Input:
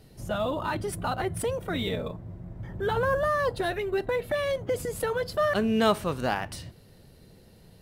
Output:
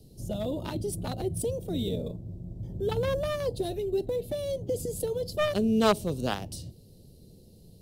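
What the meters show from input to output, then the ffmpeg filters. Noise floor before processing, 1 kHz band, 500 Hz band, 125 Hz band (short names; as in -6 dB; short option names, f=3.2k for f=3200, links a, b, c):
-54 dBFS, -6.5 dB, -1.5 dB, +1.0 dB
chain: -filter_complex "[0:a]equalizer=f=1.9k:w=1.4:g=-6,acrossover=split=280|610|3300[a][b][c][d];[c]acrusher=bits=3:mix=0:aa=0.5[e];[a][b][e][d]amix=inputs=4:normalize=0,volume=1dB"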